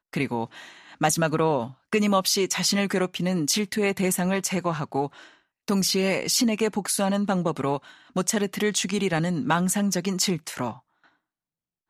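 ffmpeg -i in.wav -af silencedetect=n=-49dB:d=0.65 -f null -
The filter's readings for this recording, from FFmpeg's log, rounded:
silence_start: 11.06
silence_end: 11.89 | silence_duration: 0.83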